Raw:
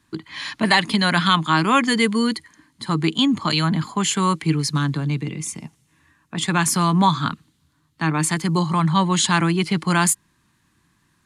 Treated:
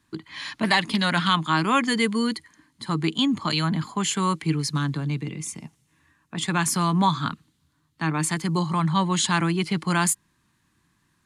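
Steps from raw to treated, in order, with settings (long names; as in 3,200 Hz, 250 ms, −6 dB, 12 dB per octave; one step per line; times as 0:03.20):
0:00.64–0:01.33: highs frequency-modulated by the lows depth 0.14 ms
level −4 dB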